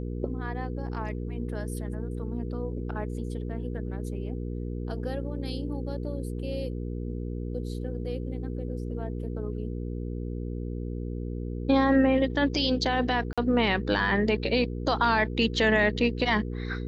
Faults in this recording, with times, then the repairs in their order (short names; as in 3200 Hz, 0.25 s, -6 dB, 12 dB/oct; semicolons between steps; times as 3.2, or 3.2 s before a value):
hum 60 Hz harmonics 8 -33 dBFS
13.33–13.38 gap 46 ms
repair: de-hum 60 Hz, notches 8; interpolate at 13.33, 46 ms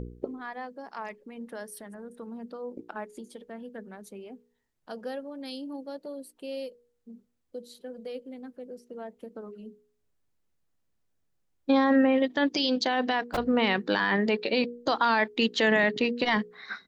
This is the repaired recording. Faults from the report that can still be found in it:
none